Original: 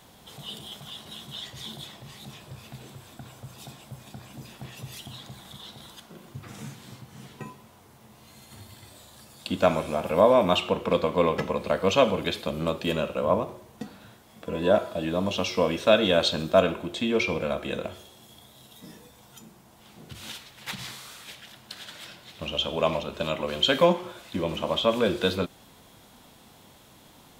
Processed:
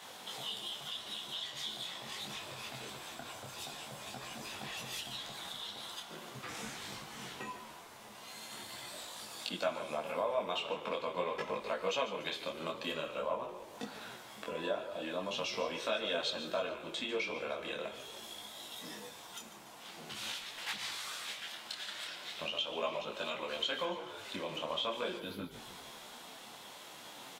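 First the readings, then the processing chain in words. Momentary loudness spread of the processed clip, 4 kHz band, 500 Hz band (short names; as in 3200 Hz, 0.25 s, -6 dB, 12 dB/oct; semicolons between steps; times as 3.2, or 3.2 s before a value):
12 LU, -6.5 dB, -13.5 dB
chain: spectral gain 25.18–25.51, 350–10000 Hz -15 dB; weighting filter A; compressor 2.5:1, threshold -46 dBFS, peak gain reduction 20 dB; frequency-shifting echo 0.146 s, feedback 52%, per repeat -41 Hz, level -12.5 dB; detuned doubles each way 15 cents; gain +8.5 dB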